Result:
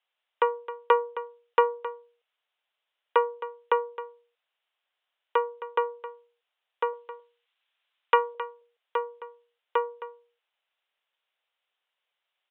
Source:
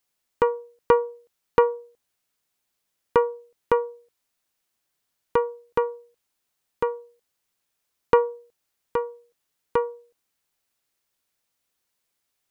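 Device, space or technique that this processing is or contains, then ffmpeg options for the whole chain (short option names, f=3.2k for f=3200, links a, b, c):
musical greeting card: -filter_complex "[0:a]asettb=1/sr,asplit=3[a][b][c];[a]atrim=end=6.934[d];[b]atrim=start=6.93:end=8.35,asetpts=PTS-STARTPTS,afade=t=in:d=0.004:c=qsin,afade=t=out:st=1.416:d=0.004:c=qsin,tiltshelf=f=800:g=-5.5[e];[c]atrim=start=8.346[f];[d][e]acrossfade=d=0.004:c1=hsin:c2=qsin[g];[g][f]acrossfade=d=0.004:c1=qsin:c2=hsin,aresample=8000,aresample=44100,highpass=f=520:w=0.5412,highpass=f=520:w=1.3066,equalizer=f=3k:t=o:w=0.46:g=5,aecho=1:1:265:0.2"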